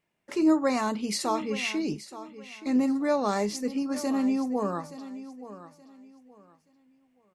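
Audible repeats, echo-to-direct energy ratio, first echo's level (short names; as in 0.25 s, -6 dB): 2, -14.0 dB, -14.5 dB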